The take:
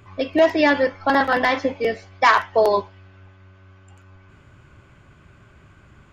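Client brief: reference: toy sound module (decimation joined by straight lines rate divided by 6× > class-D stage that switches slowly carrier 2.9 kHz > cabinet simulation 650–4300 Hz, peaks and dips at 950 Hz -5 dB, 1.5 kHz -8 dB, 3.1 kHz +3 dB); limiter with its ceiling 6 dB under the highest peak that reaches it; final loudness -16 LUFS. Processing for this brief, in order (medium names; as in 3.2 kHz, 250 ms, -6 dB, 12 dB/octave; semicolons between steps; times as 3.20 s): peak limiter -11 dBFS; decimation joined by straight lines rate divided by 6×; class-D stage that switches slowly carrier 2.9 kHz; cabinet simulation 650–4300 Hz, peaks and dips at 950 Hz -5 dB, 1.5 kHz -8 dB, 3.1 kHz +3 dB; trim +12.5 dB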